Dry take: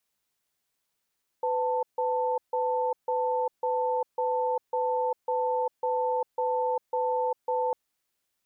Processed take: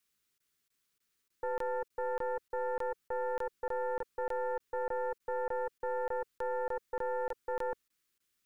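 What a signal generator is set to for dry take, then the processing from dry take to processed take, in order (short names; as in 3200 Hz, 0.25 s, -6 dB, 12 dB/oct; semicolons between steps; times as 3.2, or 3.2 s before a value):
cadence 502 Hz, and 887 Hz, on 0.40 s, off 0.15 s, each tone -27 dBFS 6.30 s
tracing distortion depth 0.051 ms; band shelf 720 Hz -10 dB 1.1 oct; crackling interface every 0.30 s, samples 1024, zero, from 0.38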